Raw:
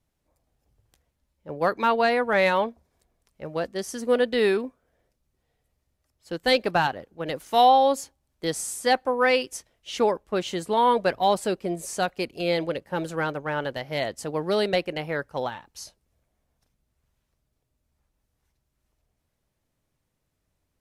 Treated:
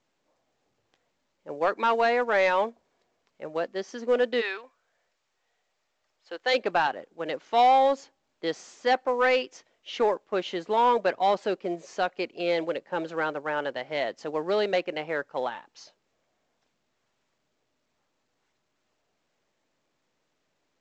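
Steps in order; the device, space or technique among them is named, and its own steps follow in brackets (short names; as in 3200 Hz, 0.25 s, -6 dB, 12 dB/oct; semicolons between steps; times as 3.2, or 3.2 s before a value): 4.4–6.53 HPF 1100 Hz -> 490 Hz 12 dB/oct; telephone (BPF 290–3600 Hz; soft clip -13 dBFS, distortion -18 dB; µ-law 128 kbps 16000 Hz)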